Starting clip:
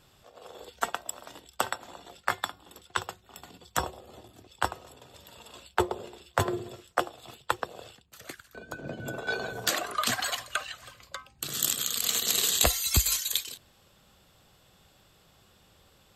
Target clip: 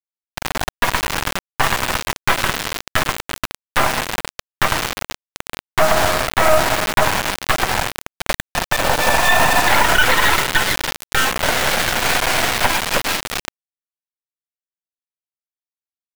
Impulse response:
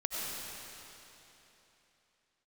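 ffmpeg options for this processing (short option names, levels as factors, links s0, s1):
-filter_complex "[0:a]asettb=1/sr,asplit=3[s0][s1][s2];[s0]atrim=end=11.174[s3];[s1]atrim=start=11.17:end=12.11,asetpts=PTS-STARTPTS,afade=t=in:d=0.004:c=qsin,afade=t=out:st=0.936:d=0.004:c=qsin,aeval=exprs='val(0)+0.5*0.0168*sgn(val(0))':c=same[s4];[s2]atrim=start=12.106[s5];[s3][s4]acrossfade=d=0.004:c1=hsin:c2=qsin[s6];[s6][s5]acrossfade=d=0.004:c1=qsin:c2=hsin,asplit=2[s7][s8];[1:a]atrim=start_sample=2205[s9];[s8][s9]afir=irnorm=-1:irlink=0,volume=0.15[s10];[s7][s10]amix=inputs=2:normalize=0,acontrast=54,asoftclip=type=hard:threshold=0.112,highpass=f=240:t=q:w=0.5412,highpass=f=240:t=q:w=1.307,lowpass=f=2200:t=q:w=0.5176,lowpass=f=2200:t=q:w=0.7071,lowpass=f=2200:t=q:w=1.932,afreqshift=270,aeval=exprs='val(0)+0.00178*sin(2*PI*900*n/s)':c=same,acrusher=bits=3:dc=4:mix=0:aa=0.000001,alimiter=level_in=11.2:limit=0.891:release=50:level=0:latency=1,volume=0.891"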